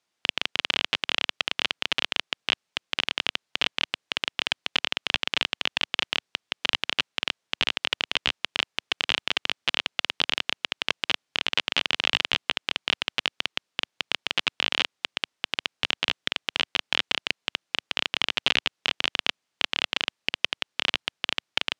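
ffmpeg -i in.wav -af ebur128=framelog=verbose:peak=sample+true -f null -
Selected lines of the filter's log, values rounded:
Integrated loudness:
  I:         -26.9 LUFS
  Threshold: -36.9 LUFS
Loudness range:
  LRA:         1.6 LU
  Threshold: -46.9 LUFS
  LRA low:   -27.7 LUFS
  LRA high:  -26.1 LUFS
Sample peak:
  Peak:       -2.5 dBFS
True peak:
  Peak:       -2.4 dBFS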